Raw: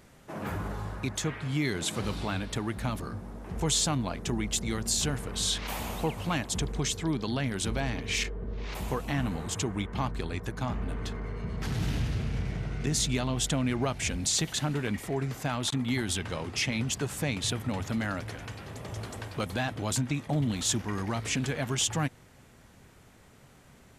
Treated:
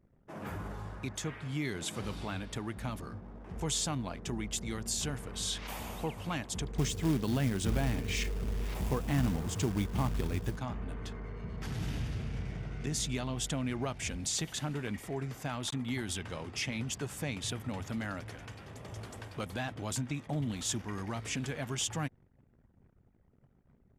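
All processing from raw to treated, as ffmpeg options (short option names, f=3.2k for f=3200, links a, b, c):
-filter_complex "[0:a]asettb=1/sr,asplit=3[a][b][c];[a]atrim=end=6.784[d];[b]atrim=start=6.78:end=10.57,asetpts=PTS-STARTPTS,afade=t=in:d=0.004:c=qsin,afade=t=out:st=3.786:d=0.004:c=qsin,lowshelf=f=470:g=8,acrusher=bits=4:mode=log:mix=0:aa=0.000001[e];[c]atrim=start=10.566[f];[d][e]acrossfade=d=0.004:c1=hsin:c2=qsin[g];[g][f]acrossfade=d=0.004:c1=qsin:c2=hsin,anlmdn=0.00158,bandreject=f=4.1k:w=18,volume=-6dB"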